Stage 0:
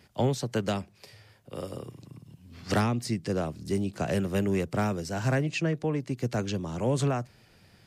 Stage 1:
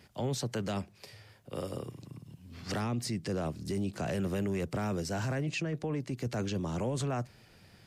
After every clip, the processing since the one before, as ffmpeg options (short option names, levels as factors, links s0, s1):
-af "alimiter=level_in=1.26:limit=0.0631:level=0:latency=1:release=12,volume=0.794"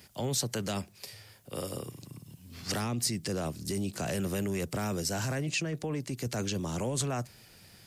-af "crystalizer=i=2.5:c=0"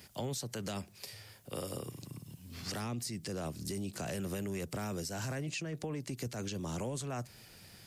-af "alimiter=level_in=1.06:limit=0.0631:level=0:latency=1:release=223,volume=0.944,acompressor=threshold=0.0141:ratio=2.5"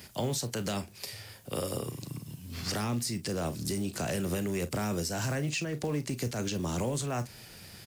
-af "aecho=1:1:34|47:0.211|0.141,acrusher=bits=6:mode=log:mix=0:aa=0.000001,volume=2"